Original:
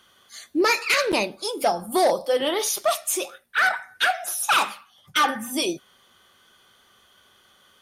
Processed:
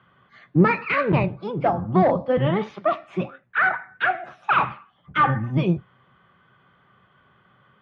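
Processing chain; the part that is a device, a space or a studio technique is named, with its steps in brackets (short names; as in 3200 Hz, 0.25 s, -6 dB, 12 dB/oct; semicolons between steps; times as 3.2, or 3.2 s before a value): sub-octave bass pedal (octaver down 1 oct, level +2 dB; speaker cabinet 69–2300 Hz, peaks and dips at 130 Hz +10 dB, 180 Hz +7 dB, 1100 Hz +4 dB)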